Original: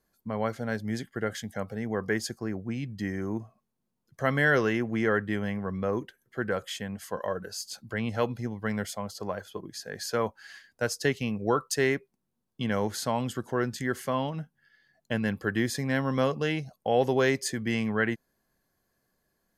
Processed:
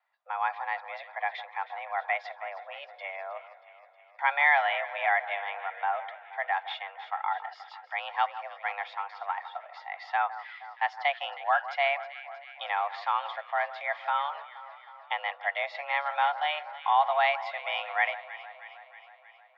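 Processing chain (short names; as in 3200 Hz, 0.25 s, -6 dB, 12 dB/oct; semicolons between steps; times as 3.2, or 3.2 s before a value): mistuned SSB +290 Hz 420–3300 Hz; echo with dull and thin repeats by turns 0.158 s, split 1600 Hz, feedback 78%, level -13 dB; gain +2 dB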